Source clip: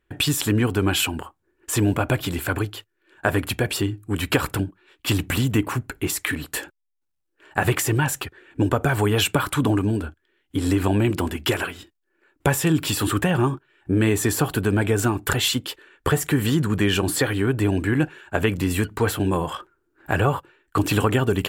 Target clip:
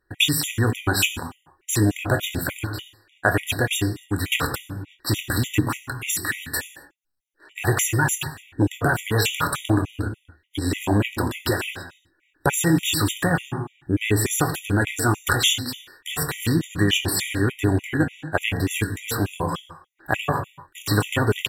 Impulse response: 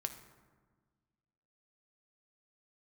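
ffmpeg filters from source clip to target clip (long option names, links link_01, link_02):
-filter_complex "[0:a]tiltshelf=frequency=890:gain=-3,asplit=2[link_01][link_02];[link_02]adelay=24,volume=-12dB[link_03];[link_01][link_03]amix=inputs=2:normalize=0[link_04];[1:a]atrim=start_sample=2205,afade=type=out:start_time=0.27:duration=0.01,atrim=end_sample=12348,asetrate=35280,aresample=44100[link_05];[link_04][link_05]afir=irnorm=-1:irlink=0,afftfilt=real='re*gt(sin(2*PI*3.4*pts/sr)*(1-2*mod(floor(b*sr/1024/1900),2)),0)':imag='im*gt(sin(2*PI*3.4*pts/sr)*(1-2*mod(floor(b*sr/1024/1900),2)),0)':win_size=1024:overlap=0.75,volume=2dB"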